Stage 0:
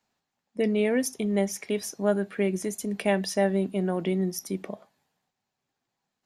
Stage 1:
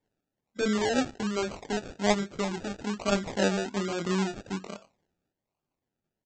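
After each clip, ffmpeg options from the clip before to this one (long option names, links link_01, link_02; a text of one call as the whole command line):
ffmpeg -i in.wav -af "flanger=delay=19:depth=6.1:speed=0.91,aresample=16000,acrusher=samples=12:mix=1:aa=0.000001:lfo=1:lforange=7.2:lforate=1.2,aresample=44100" out.wav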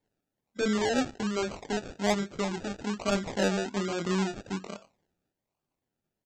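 ffmpeg -i in.wav -af "asoftclip=type=tanh:threshold=-15dB" out.wav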